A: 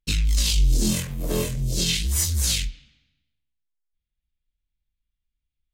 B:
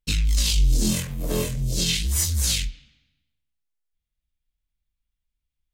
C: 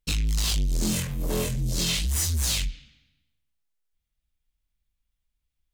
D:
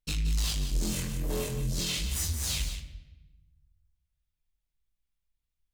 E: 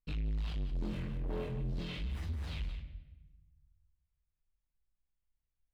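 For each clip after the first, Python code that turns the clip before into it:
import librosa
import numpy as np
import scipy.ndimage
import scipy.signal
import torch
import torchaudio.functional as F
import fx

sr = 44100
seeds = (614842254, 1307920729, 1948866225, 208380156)

y1 = fx.notch(x, sr, hz=370.0, q=12.0)
y2 = 10.0 ** (-23.5 / 20.0) * np.tanh(y1 / 10.0 ** (-23.5 / 20.0))
y2 = F.gain(torch.from_numpy(y2), 2.0).numpy()
y3 = y2 + 10.0 ** (-9.5 / 20.0) * np.pad(y2, (int(175 * sr / 1000.0), 0))[:len(y2)]
y3 = fx.room_shoebox(y3, sr, seeds[0], volume_m3=550.0, walls='mixed', distance_m=0.44)
y3 = F.gain(torch.from_numpy(y3), -6.0).numpy()
y4 = fx.air_absorb(y3, sr, metres=470.0)
y4 = 10.0 ** (-29.5 / 20.0) * np.tanh(y4 / 10.0 ** (-29.5 / 20.0))
y4 = F.gain(torch.from_numpy(y4), -2.0).numpy()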